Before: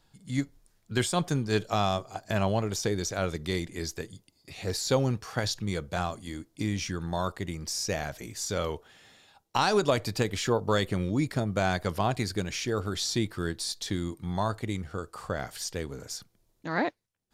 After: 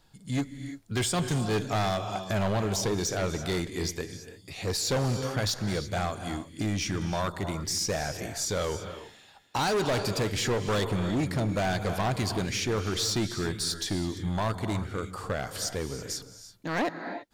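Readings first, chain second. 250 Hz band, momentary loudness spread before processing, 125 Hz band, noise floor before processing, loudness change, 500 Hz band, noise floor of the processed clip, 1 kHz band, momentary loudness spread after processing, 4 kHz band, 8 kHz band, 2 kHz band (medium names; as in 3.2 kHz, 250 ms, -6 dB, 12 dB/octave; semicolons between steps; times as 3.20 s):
+0.5 dB, 10 LU, +1.0 dB, -71 dBFS, +0.5 dB, -0.5 dB, -54 dBFS, -0.5 dB, 8 LU, +2.0 dB, +3.0 dB, +0.5 dB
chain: gated-style reverb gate 360 ms rising, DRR 11 dB; hard clipper -26.5 dBFS, distortion -8 dB; trim +3 dB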